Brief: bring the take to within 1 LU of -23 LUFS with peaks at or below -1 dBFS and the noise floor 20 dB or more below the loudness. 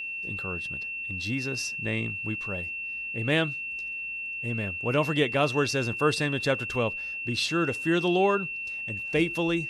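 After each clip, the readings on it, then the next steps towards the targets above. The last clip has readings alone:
steady tone 2700 Hz; tone level -32 dBFS; loudness -27.5 LUFS; peak -10.0 dBFS; loudness target -23.0 LUFS
-> notch 2700 Hz, Q 30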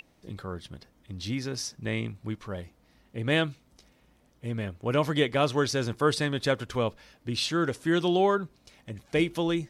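steady tone none; loudness -28.5 LUFS; peak -10.5 dBFS; loudness target -23.0 LUFS
-> gain +5.5 dB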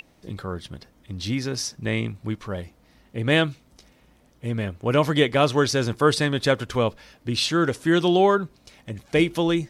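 loudness -23.0 LUFS; peak -5.0 dBFS; noise floor -58 dBFS

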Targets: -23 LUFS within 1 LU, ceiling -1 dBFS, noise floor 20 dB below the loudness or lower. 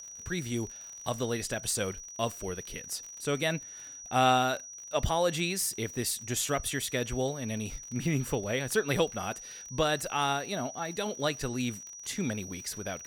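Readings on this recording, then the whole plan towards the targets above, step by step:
ticks 44/s; steady tone 5800 Hz; tone level -43 dBFS; loudness -31.5 LUFS; peak -13.0 dBFS; loudness target -23.0 LUFS
-> de-click; notch 5800 Hz, Q 30; gain +8.5 dB

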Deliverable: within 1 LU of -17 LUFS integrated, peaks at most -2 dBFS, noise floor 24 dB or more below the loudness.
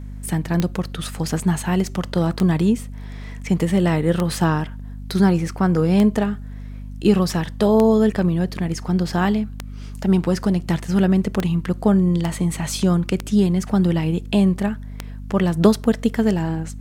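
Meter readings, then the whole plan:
clicks 10; hum 50 Hz; harmonics up to 250 Hz; hum level -30 dBFS; loudness -20.0 LUFS; peak -3.0 dBFS; loudness target -17.0 LUFS
-> de-click; notches 50/100/150/200/250 Hz; gain +3 dB; limiter -2 dBFS

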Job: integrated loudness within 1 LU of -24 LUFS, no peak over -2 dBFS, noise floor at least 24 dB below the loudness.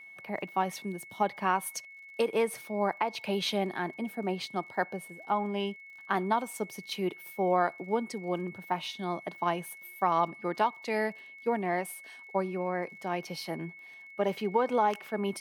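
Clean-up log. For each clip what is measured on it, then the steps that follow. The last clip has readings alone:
ticks 33/s; steady tone 2200 Hz; tone level -47 dBFS; loudness -32.0 LUFS; peak -14.0 dBFS; loudness target -24.0 LUFS
-> de-click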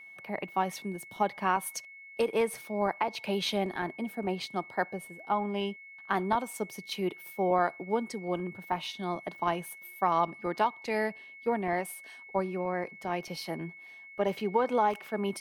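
ticks 0.065/s; steady tone 2200 Hz; tone level -47 dBFS
-> notch 2200 Hz, Q 30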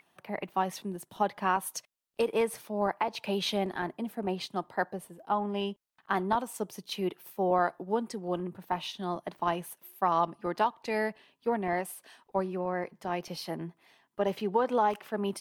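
steady tone none; loudness -32.0 LUFS; peak -13.5 dBFS; loudness target -24.0 LUFS
-> gain +8 dB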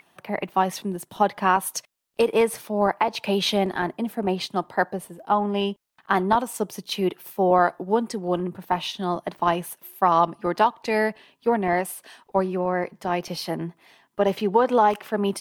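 loudness -24.0 LUFS; peak -5.5 dBFS; noise floor -68 dBFS

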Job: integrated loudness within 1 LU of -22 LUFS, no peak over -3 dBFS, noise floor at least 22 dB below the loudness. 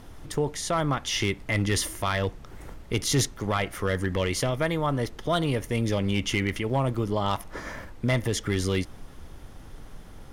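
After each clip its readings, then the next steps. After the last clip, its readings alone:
clipped 0.3%; flat tops at -16.0 dBFS; noise floor -45 dBFS; noise floor target -50 dBFS; loudness -27.5 LUFS; peak -16.0 dBFS; loudness target -22.0 LUFS
-> clip repair -16 dBFS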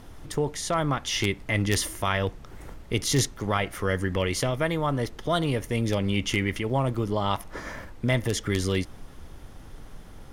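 clipped 0.0%; noise floor -45 dBFS; noise floor target -49 dBFS
-> noise print and reduce 6 dB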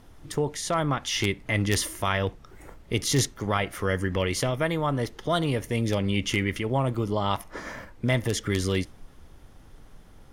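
noise floor -51 dBFS; loudness -27.0 LUFS; peak -7.0 dBFS; loudness target -22.0 LUFS
-> gain +5 dB; limiter -3 dBFS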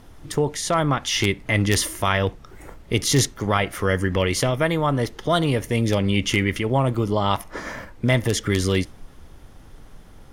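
loudness -22.0 LUFS; peak -3.0 dBFS; noise floor -46 dBFS

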